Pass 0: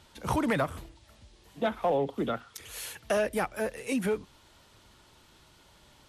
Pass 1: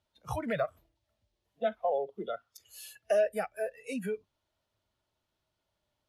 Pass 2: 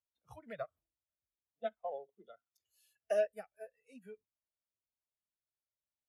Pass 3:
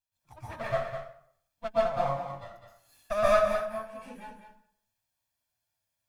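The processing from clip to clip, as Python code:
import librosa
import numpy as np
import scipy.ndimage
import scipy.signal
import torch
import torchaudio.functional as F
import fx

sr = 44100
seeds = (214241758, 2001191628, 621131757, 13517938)

y1 = fx.noise_reduce_blind(x, sr, reduce_db=19)
y1 = fx.graphic_eq_31(y1, sr, hz=(100, 630, 8000), db=(6, 9, -4))
y1 = y1 * librosa.db_to_amplitude(-6.0)
y2 = fx.upward_expand(y1, sr, threshold_db=-37.0, expansion=2.5)
y2 = y2 * librosa.db_to_amplitude(-3.5)
y3 = fx.lower_of_two(y2, sr, delay_ms=1.2)
y3 = y3 + 10.0 ** (-8.5 / 20.0) * np.pad(y3, (int(204 * sr / 1000.0), 0))[:len(y3)]
y3 = fx.rev_plate(y3, sr, seeds[0], rt60_s=0.63, hf_ratio=0.75, predelay_ms=110, drr_db=-9.5)
y3 = y3 * librosa.db_to_amplitude(3.0)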